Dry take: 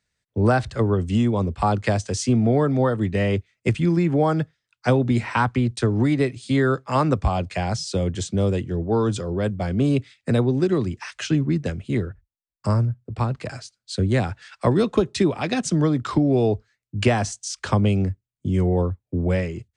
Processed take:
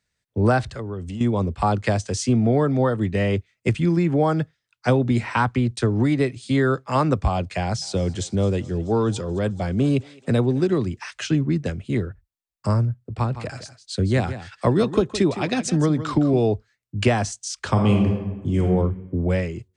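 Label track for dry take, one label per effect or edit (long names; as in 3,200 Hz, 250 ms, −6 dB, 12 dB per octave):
0.650000	1.210000	downward compressor 4 to 1, threshold −29 dBFS
7.600000	10.770000	feedback echo with a high-pass in the loop 215 ms, feedback 70%, high-pass 610 Hz, level −20 dB
13.010000	16.390000	single-tap delay 163 ms −12.5 dB
17.710000	18.630000	thrown reverb, RT60 1.2 s, DRR 1.5 dB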